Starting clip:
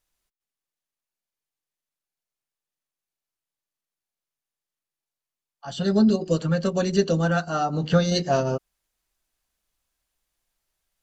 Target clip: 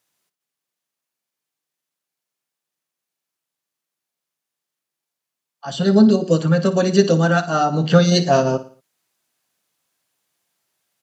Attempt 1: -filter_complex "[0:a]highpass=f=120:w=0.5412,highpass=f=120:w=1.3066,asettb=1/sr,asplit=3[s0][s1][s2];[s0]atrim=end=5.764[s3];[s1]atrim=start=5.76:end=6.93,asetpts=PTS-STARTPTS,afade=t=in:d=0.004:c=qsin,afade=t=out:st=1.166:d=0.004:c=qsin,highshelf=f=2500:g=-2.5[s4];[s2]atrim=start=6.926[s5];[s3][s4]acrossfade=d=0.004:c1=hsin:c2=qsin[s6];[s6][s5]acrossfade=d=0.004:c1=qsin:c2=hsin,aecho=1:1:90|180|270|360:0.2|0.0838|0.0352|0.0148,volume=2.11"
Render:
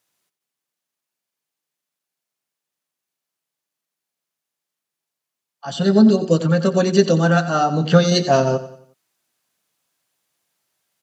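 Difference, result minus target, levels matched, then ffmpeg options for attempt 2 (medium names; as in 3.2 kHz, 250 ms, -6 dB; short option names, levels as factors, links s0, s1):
echo 33 ms late
-filter_complex "[0:a]highpass=f=120:w=0.5412,highpass=f=120:w=1.3066,asettb=1/sr,asplit=3[s0][s1][s2];[s0]atrim=end=5.764[s3];[s1]atrim=start=5.76:end=6.93,asetpts=PTS-STARTPTS,afade=t=in:d=0.004:c=qsin,afade=t=out:st=1.166:d=0.004:c=qsin,highshelf=f=2500:g=-2.5[s4];[s2]atrim=start=6.926[s5];[s3][s4]acrossfade=d=0.004:c1=hsin:c2=qsin[s6];[s6][s5]acrossfade=d=0.004:c1=qsin:c2=hsin,aecho=1:1:57|114|171|228:0.2|0.0838|0.0352|0.0148,volume=2.11"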